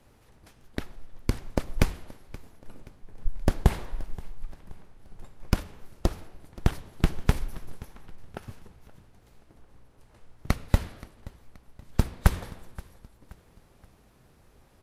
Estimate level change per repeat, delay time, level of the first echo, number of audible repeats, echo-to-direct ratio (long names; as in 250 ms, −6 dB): −7.5 dB, 526 ms, −21.0 dB, 2, −20.0 dB